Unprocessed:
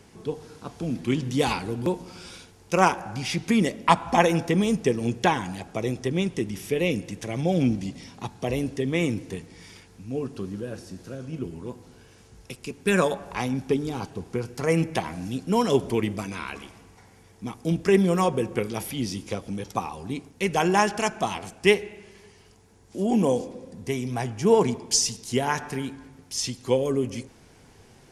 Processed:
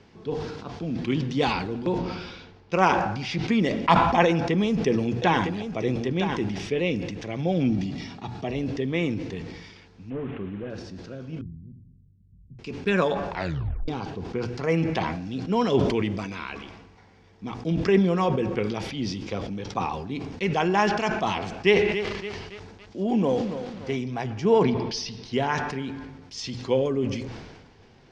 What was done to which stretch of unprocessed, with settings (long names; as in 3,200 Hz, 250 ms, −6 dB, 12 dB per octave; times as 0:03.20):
0:01.98–0:02.73: high-frequency loss of the air 120 metres
0:04.26–0:06.62: single-tap delay 960 ms −9 dB
0:07.70–0:08.55: notch comb filter 520 Hz
0:10.10–0:10.70: linear delta modulator 16 kbit/s, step −43.5 dBFS
0:11.41–0:12.59: inverse Chebyshev low-pass filter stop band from 1,100 Hz, stop band 80 dB
0:13.30: tape stop 0.58 s
0:15.84–0:16.55: high-shelf EQ 7,500 Hz +7 dB
0:21.54–0:23.96: feedback echo at a low word length 282 ms, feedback 55%, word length 6 bits, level −9.5 dB
0:24.63–0:25.33: Savitzky-Golay smoothing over 15 samples
whole clip: low-pass filter 5,000 Hz 24 dB per octave; mains-hum notches 60/120 Hz; level that may fall only so fast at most 43 dB per second; level −1.5 dB